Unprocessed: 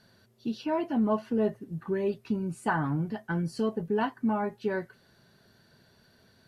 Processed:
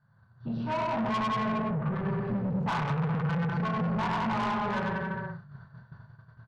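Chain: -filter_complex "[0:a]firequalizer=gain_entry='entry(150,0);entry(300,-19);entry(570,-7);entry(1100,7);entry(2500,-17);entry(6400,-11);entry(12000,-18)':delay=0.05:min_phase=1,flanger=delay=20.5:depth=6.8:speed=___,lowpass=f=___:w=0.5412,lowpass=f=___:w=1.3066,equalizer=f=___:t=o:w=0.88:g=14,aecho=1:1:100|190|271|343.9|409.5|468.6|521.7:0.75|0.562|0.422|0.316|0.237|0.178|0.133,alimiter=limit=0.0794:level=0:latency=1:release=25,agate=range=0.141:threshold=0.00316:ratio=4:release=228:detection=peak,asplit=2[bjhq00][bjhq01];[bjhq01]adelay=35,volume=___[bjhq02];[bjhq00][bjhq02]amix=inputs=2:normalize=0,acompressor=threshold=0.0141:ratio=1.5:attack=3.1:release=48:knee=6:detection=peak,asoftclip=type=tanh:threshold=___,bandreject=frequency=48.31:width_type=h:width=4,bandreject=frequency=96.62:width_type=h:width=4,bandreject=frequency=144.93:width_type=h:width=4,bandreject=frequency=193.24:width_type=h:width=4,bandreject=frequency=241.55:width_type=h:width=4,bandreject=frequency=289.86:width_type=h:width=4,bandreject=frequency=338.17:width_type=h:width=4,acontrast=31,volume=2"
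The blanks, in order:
0.57, 3900, 3900, 130, 0.447, 0.0133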